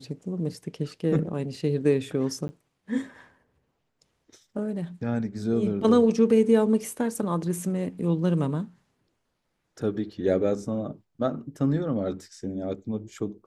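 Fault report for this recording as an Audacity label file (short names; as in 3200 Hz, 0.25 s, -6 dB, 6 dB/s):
2.480000	2.490000	gap 10 ms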